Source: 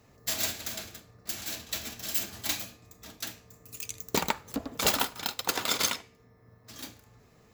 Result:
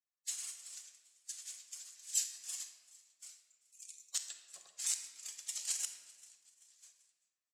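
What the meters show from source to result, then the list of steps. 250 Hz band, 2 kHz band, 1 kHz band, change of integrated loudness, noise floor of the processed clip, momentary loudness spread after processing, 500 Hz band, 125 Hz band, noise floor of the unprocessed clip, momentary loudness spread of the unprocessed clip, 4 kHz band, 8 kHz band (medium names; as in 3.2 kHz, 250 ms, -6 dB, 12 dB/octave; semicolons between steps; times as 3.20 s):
under -40 dB, -20.5 dB, -31.5 dB, -8.5 dB, under -85 dBFS, 19 LU, under -35 dB, under -40 dB, -60 dBFS, 18 LU, -13.5 dB, -3.5 dB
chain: expander on every frequency bin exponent 2; transient shaper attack -5 dB, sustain +6 dB; spectral gate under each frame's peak -20 dB weak; high-pass 110 Hz; peaking EQ 7.5 kHz +12 dB 0.76 oct; on a send: frequency-shifting echo 387 ms, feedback 48%, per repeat +95 Hz, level -23 dB; on the sum: inverted gate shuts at -24 dBFS, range -29 dB; frequency weighting ITU-R 468; simulated room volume 1100 m³, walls mixed, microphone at 0.99 m; trim -5.5 dB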